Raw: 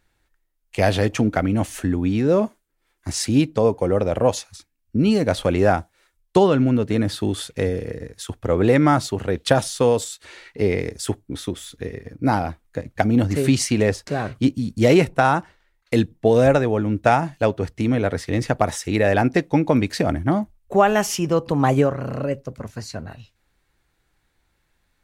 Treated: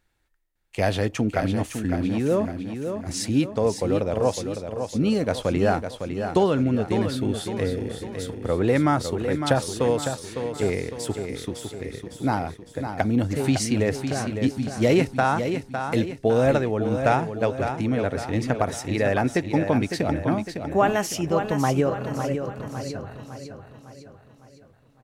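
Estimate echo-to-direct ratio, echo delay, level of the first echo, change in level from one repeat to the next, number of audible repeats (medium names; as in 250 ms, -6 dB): -6.5 dB, 556 ms, -7.5 dB, -6.5 dB, 5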